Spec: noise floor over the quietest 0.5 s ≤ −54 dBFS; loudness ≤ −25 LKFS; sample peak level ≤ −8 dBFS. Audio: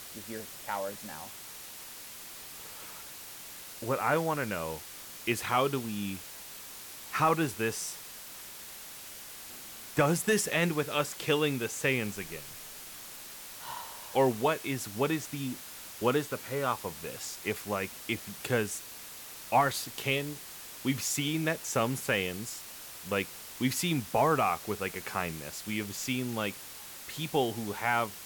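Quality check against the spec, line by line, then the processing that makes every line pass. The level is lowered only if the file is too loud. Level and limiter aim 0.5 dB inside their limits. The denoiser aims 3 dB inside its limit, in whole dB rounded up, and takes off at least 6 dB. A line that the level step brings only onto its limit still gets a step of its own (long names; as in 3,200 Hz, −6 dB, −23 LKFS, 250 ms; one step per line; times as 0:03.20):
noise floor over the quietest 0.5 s −46 dBFS: out of spec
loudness −32.5 LKFS: in spec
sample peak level −14.0 dBFS: in spec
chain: broadband denoise 11 dB, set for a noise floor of −46 dBFS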